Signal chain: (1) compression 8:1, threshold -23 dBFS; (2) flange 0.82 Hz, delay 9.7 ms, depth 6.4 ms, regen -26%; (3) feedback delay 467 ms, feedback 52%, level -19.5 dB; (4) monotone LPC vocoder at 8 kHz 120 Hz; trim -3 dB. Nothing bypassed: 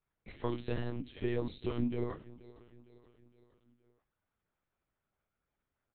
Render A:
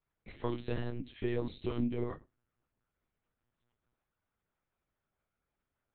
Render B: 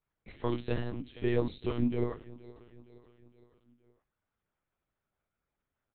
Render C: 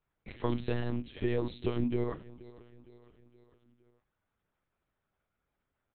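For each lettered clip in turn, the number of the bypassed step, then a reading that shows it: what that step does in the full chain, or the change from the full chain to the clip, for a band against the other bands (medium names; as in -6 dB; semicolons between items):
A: 3, momentary loudness spread change -13 LU; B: 1, mean gain reduction 2.0 dB; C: 2, loudness change +3.5 LU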